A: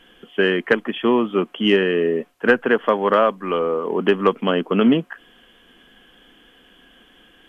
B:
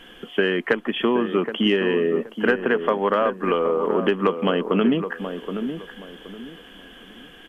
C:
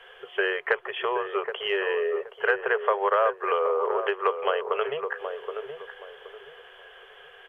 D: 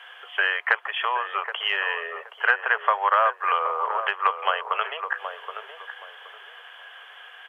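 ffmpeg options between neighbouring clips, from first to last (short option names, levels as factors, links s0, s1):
-filter_complex "[0:a]acompressor=threshold=0.0501:ratio=3,asplit=2[s0][s1];[s1]adelay=773,lowpass=f=1200:p=1,volume=0.398,asplit=2[s2][s3];[s3]adelay=773,lowpass=f=1200:p=1,volume=0.3,asplit=2[s4][s5];[s5]adelay=773,lowpass=f=1200:p=1,volume=0.3,asplit=2[s6][s7];[s7]adelay=773,lowpass=f=1200:p=1,volume=0.3[s8];[s0][s2][s4][s6][s8]amix=inputs=5:normalize=0,volume=2"
-filter_complex "[0:a]afftfilt=real='re*(1-between(b*sr/4096,160,370))':imag='im*(1-between(b*sr/4096,160,370))':win_size=4096:overlap=0.75,acrossover=split=310 2700:gain=0.141 1 0.178[s0][s1][s2];[s0][s1][s2]amix=inputs=3:normalize=0,acrossover=split=170|470[s3][s4][s5];[s4]alimiter=level_in=1.68:limit=0.0631:level=0:latency=1:release=242,volume=0.596[s6];[s3][s6][s5]amix=inputs=3:normalize=0"
-af "highpass=f=750:w=0.5412,highpass=f=750:w=1.3066,volume=1.88"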